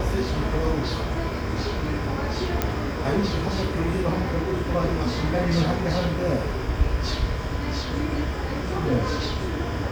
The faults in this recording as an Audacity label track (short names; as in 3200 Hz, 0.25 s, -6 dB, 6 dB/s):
2.620000	2.620000	pop -7 dBFS